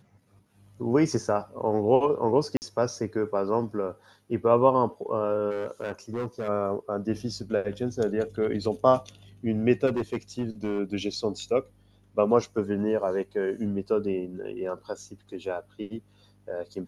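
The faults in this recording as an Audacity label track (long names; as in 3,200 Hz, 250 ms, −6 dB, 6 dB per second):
2.570000	2.620000	drop-out 49 ms
5.500000	6.490000	clipping −26 dBFS
9.860000	10.800000	clipping −23 dBFS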